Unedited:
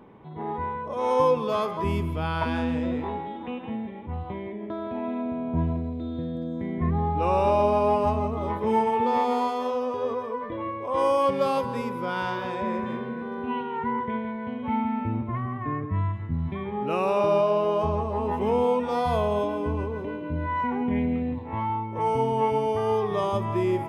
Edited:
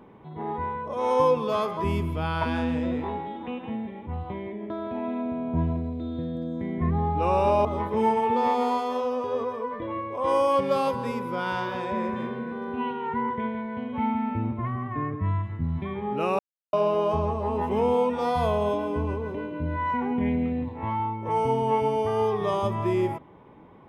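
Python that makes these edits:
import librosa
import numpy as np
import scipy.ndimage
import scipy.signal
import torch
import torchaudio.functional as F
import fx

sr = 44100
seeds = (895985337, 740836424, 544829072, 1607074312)

y = fx.edit(x, sr, fx.cut(start_s=7.65, length_s=0.7),
    fx.silence(start_s=17.09, length_s=0.34), tone=tone)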